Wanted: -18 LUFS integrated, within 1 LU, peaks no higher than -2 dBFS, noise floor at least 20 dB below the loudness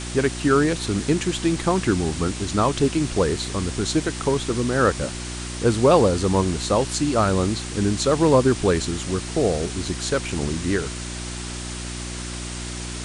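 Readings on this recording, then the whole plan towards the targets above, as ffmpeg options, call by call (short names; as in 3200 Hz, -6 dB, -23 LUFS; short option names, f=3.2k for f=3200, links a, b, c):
hum 60 Hz; harmonics up to 360 Hz; hum level -31 dBFS; noise floor -32 dBFS; noise floor target -43 dBFS; loudness -22.5 LUFS; peak -4.5 dBFS; loudness target -18.0 LUFS
-> -af "bandreject=f=60:t=h:w=4,bandreject=f=120:t=h:w=4,bandreject=f=180:t=h:w=4,bandreject=f=240:t=h:w=4,bandreject=f=300:t=h:w=4,bandreject=f=360:t=h:w=4"
-af "afftdn=nr=11:nf=-32"
-af "volume=4.5dB,alimiter=limit=-2dB:level=0:latency=1"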